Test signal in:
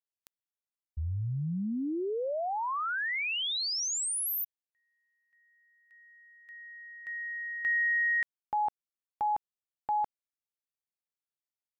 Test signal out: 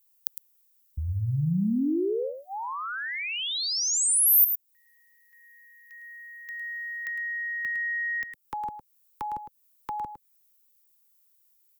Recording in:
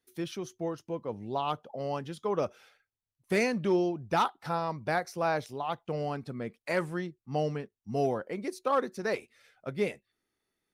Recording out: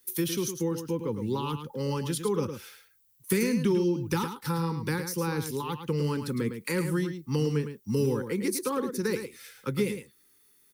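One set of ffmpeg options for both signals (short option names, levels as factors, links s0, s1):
-filter_complex "[0:a]asuperstop=centerf=670:order=8:qfactor=2.3,highshelf=f=6400:g=5,acrossover=split=150|380[s0][s1][s2];[s0]acompressor=threshold=0.01:ratio=4[s3];[s1]acompressor=threshold=0.0158:ratio=4[s4];[s2]acompressor=threshold=0.00562:ratio=4[s5];[s3][s4][s5]amix=inputs=3:normalize=0,aemphasis=mode=production:type=50fm,aecho=1:1:108:0.376,volume=2.82"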